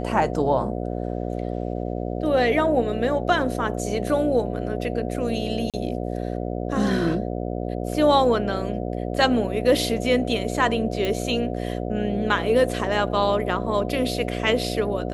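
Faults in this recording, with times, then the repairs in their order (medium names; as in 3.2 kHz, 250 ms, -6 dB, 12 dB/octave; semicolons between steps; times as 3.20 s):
buzz 60 Hz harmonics 12 -28 dBFS
5.70–5.74 s: dropout 37 ms
11.05 s: pop -13 dBFS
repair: de-click; de-hum 60 Hz, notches 12; interpolate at 5.70 s, 37 ms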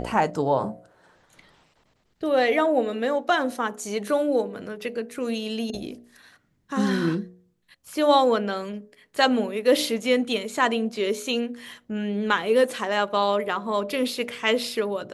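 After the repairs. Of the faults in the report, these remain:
nothing left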